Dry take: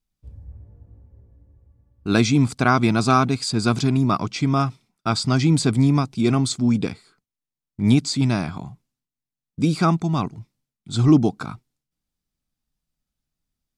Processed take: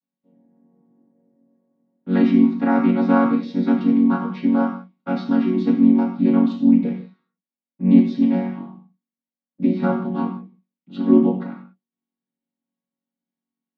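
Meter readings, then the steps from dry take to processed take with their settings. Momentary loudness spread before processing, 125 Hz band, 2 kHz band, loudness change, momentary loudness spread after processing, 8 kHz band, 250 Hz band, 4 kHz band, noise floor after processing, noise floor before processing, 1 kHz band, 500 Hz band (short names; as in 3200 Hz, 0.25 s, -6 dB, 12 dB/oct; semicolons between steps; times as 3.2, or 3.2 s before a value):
12 LU, -9.0 dB, -5.5 dB, +1.5 dB, 13 LU, under -30 dB, +4.5 dB, under -15 dB, under -85 dBFS, under -85 dBFS, -4.0 dB, +1.5 dB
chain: chord vocoder major triad, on F#3; LPF 3600 Hz 24 dB/oct; non-linear reverb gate 0.21 s falling, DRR -0.5 dB; gain -1 dB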